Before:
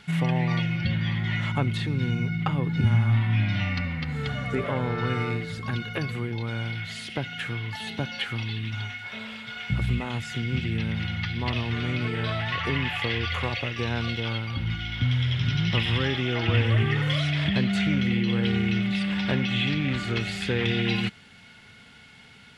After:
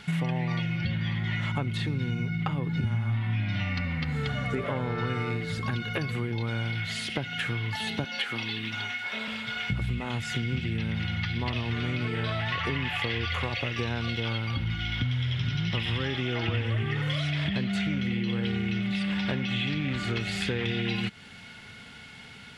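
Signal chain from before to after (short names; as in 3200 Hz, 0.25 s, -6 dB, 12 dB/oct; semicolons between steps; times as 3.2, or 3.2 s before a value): 8.04–9.28 HPF 230 Hz 12 dB/oct; compressor 4:1, threshold -31 dBFS, peak gain reduction 12.5 dB; gain +4 dB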